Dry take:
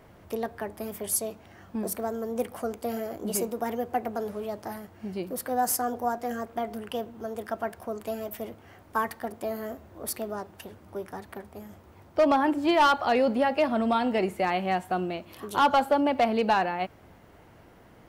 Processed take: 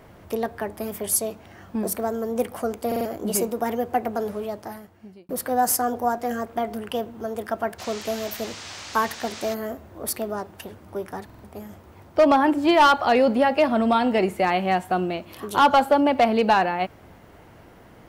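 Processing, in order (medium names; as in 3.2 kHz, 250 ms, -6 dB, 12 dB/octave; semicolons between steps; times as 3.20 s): 4.32–5.29 s: fade out; 7.78–9.53 s: band noise 530–6600 Hz -44 dBFS; buffer glitch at 2.87/11.25 s, samples 2048, times 3; trim +5 dB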